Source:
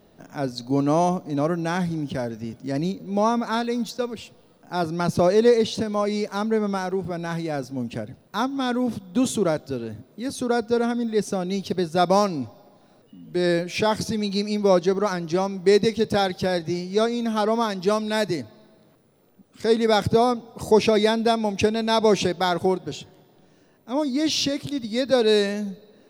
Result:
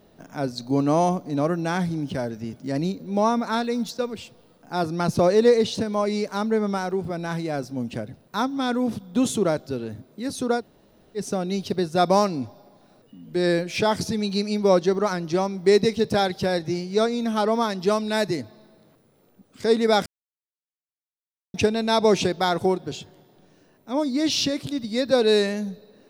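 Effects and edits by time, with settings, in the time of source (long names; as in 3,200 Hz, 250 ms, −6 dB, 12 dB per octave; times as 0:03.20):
0:10.59–0:11.19: fill with room tone, crossfade 0.10 s
0:20.06–0:21.54: silence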